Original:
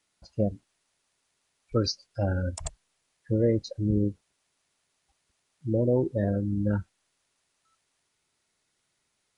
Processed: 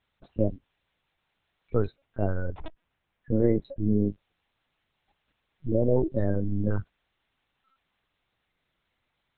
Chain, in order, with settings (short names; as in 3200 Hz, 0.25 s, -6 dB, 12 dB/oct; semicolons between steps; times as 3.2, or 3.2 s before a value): LPC vocoder at 8 kHz pitch kept; 1.85–4.05 air absorption 250 m; gain +1.5 dB